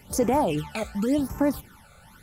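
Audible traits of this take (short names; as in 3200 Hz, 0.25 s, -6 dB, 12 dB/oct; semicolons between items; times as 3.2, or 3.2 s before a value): phasing stages 12, 0.9 Hz, lowest notch 300–3900 Hz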